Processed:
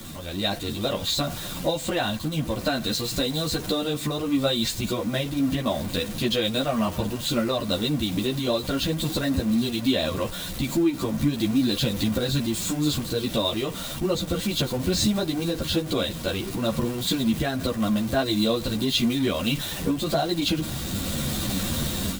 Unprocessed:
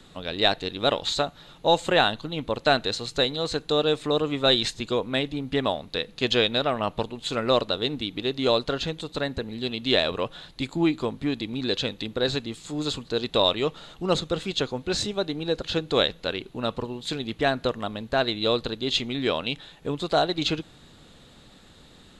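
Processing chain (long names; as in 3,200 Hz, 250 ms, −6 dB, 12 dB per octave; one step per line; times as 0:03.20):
converter with a step at zero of −30 dBFS
automatic gain control
low-shelf EQ 410 Hz +9 dB
downward compressor, threshold −11 dBFS, peak gain reduction 8.5 dB
high-shelf EQ 6,400 Hz +10 dB
notch comb filter 430 Hz
string-ensemble chorus
level −5 dB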